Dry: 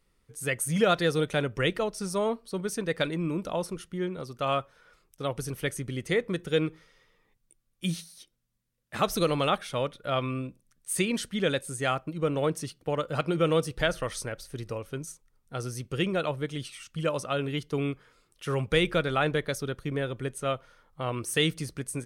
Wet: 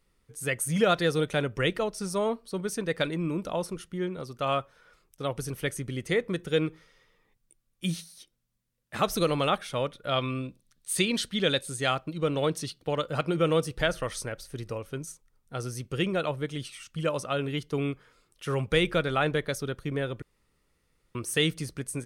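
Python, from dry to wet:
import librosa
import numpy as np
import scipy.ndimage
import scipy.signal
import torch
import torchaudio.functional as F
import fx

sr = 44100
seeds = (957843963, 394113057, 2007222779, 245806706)

y = fx.peak_eq(x, sr, hz=3900.0, db=8.5, octaves=0.74, at=(10.09, 13.08))
y = fx.edit(y, sr, fx.room_tone_fill(start_s=20.22, length_s=0.93), tone=tone)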